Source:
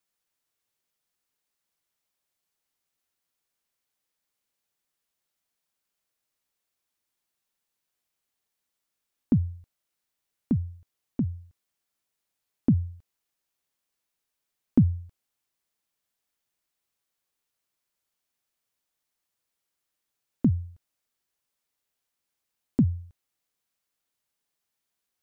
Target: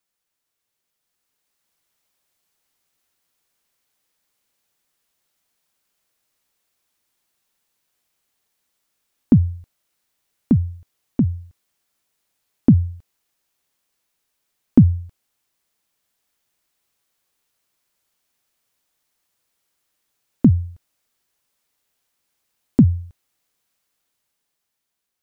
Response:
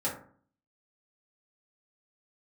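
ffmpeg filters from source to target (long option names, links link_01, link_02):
-af "dynaudnorm=framelen=240:gausssize=11:maxgain=7dB,volume=2.5dB"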